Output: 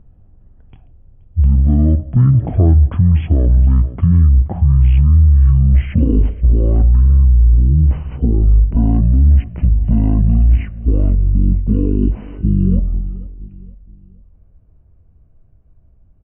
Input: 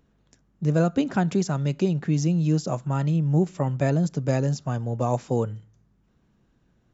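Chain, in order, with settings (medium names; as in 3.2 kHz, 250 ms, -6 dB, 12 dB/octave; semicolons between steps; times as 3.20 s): Doppler pass-by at 2.44 s, 18 m/s, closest 5 m; reverse; compression 16:1, threshold -37 dBFS, peak gain reduction 20 dB; reverse; low-pass 2.2 kHz 6 dB/octave; tilt EQ -2.5 dB/octave; feedback delay 203 ms, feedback 42%, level -22.5 dB; dynamic bell 120 Hz, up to -3 dB, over -48 dBFS, Q 1.2; low-pass that closes with the level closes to 740 Hz, closed at -22 dBFS; speed mistake 78 rpm record played at 33 rpm; loudness maximiser +34.5 dB; trim -3 dB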